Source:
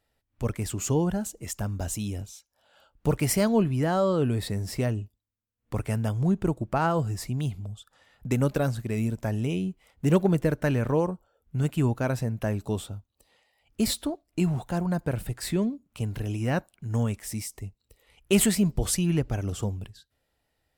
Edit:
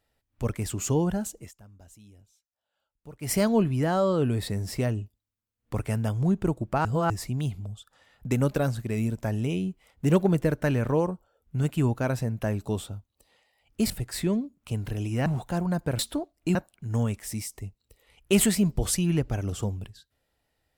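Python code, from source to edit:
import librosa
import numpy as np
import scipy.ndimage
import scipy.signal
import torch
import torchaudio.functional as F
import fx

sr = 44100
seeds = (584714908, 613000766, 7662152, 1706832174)

y = fx.edit(x, sr, fx.fade_down_up(start_s=1.37, length_s=1.98, db=-21.0, fade_s=0.15),
    fx.reverse_span(start_s=6.85, length_s=0.25),
    fx.swap(start_s=13.9, length_s=0.56, other_s=15.19, other_length_s=1.36), tone=tone)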